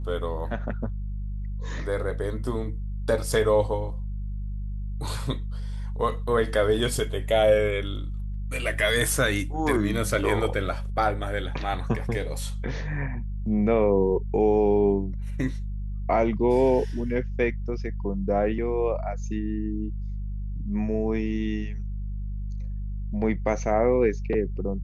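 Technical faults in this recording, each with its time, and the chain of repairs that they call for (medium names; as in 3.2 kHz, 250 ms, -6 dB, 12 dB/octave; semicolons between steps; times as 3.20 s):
hum 50 Hz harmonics 4 -31 dBFS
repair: de-hum 50 Hz, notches 4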